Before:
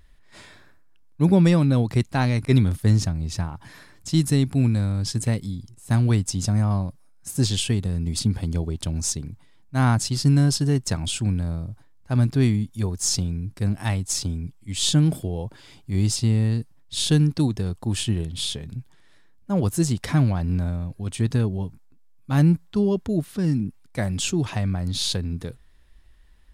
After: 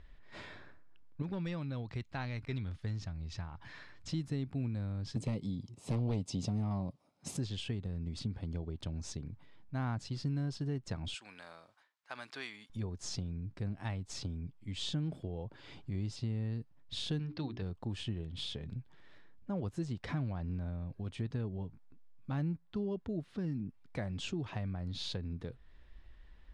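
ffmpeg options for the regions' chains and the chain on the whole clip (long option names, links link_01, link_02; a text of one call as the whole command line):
ffmpeg -i in.wav -filter_complex "[0:a]asettb=1/sr,asplit=3[link_01][link_02][link_03];[link_01]atrim=end=1.224[link_04];[link_02]atrim=start=1.22:end=4.09,asetpts=PTS-STARTPTS,afade=type=in:duration=0.004:curve=qsin,afade=type=out:start_time=2.866:duration=0.004:curve=qsin,lowpass=8000,volume=9.5dB,asoftclip=hard,volume=-9.5dB,equalizer=frequency=290:width=0.31:gain=-9.5[link_05];[link_03]atrim=start=4.086[link_06];[link_04][link_05]acrossfade=duration=0.004:curve1=hsin:curve2=qsin[link_07];[link_07][link_06]acrossfade=duration=0.004:curve1=qsin:curve2=hsin,asettb=1/sr,asplit=3[link_08][link_09][link_10];[link_08]atrim=end=5.164[link_11];[link_09]atrim=start=5.16:end=7.37,asetpts=PTS-STARTPTS,afade=type=in:duration=0.004:curve=qsin,afade=type=out:start_time=2.206:duration=0.004:curve=qsin,highpass=130,aeval=exprs='0.335*sin(PI/2*2.24*val(0)/0.335)':channel_layout=same,equalizer=frequency=1600:width=2.7:gain=-14.5[link_12];[link_10]atrim=start=7.366[link_13];[link_11][link_12]acrossfade=duration=0.004:curve1=hsin:curve2=qsin[link_14];[link_14][link_13]acrossfade=duration=0.004:curve1=qsin:curve2=hsin,asettb=1/sr,asplit=3[link_15][link_16][link_17];[link_15]atrim=end=11.144[link_18];[link_16]atrim=start=11.14:end=12.7,asetpts=PTS-STARTPTS,afade=type=in:duration=0.004:curve=qsin,afade=type=out:start_time=1.556:duration=0.004:curve=qsin,highpass=1200,highshelf=frequency=8700:gain=8[link_19];[link_17]atrim=start=12.696[link_20];[link_18][link_19]acrossfade=duration=0.004:curve1=hsin:curve2=qsin[link_21];[link_21][link_20]acrossfade=duration=0.004:curve1=qsin:curve2=hsin,asettb=1/sr,asplit=3[link_22][link_23][link_24];[link_22]atrim=end=17.194[link_25];[link_23]atrim=start=17.19:end=17.62,asetpts=PTS-STARTPTS,afade=type=in:duration=0.004:curve=qsin,afade=type=out:start_time=0.426:duration=0.004:curve=qsin,lowpass=frequency=5000:width=0.5412,lowpass=frequency=5000:width=1.3066,tiltshelf=frequency=650:gain=-5,bandreject=frequency=60:width_type=h:width=6,bandreject=frequency=120:width_type=h:width=6,bandreject=frequency=180:width_type=h:width=6,bandreject=frequency=240:width_type=h:width=6,bandreject=frequency=300:width_type=h:width=6,bandreject=frequency=360:width_type=h:width=6,bandreject=frequency=420:width_type=h:width=6[link_26];[link_24]atrim=start=17.616[link_27];[link_25][link_26]acrossfade=duration=0.004:curve1=hsin:curve2=qsin[link_28];[link_28][link_27]acrossfade=duration=0.004:curve1=qsin:curve2=hsin,lowpass=3600,equalizer=frequency=500:width=1.5:gain=2,acompressor=threshold=-40dB:ratio=2.5,volume=-1.5dB" out.wav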